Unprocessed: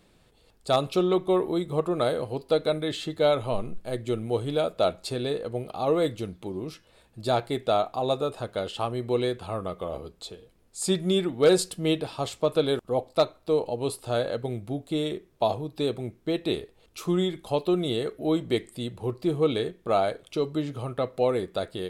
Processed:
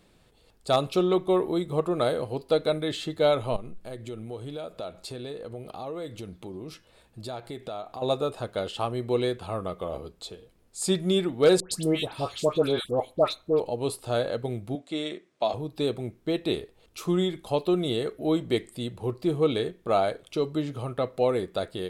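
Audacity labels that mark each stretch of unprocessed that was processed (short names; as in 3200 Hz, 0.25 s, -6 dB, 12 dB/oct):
3.560000	8.020000	compressor 3:1, threshold -36 dBFS
11.600000	13.600000	dispersion highs, late by 0.119 s, half as late at 1600 Hz
14.750000	15.540000	speaker cabinet 270–8600 Hz, peaks and dips at 420 Hz -8 dB, 880 Hz -5 dB, 2100 Hz +4 dB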